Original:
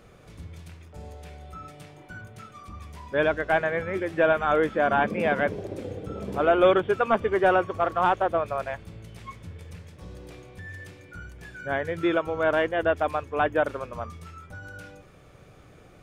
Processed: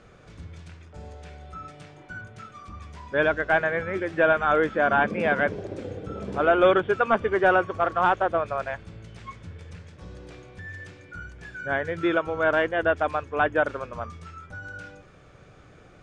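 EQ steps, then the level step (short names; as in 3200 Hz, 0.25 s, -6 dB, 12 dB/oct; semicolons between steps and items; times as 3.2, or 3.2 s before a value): LPF 7900 Hz 24 dB/oct; bell 1500 Hz +4.5 dB 0.45 oct; 0.0 dB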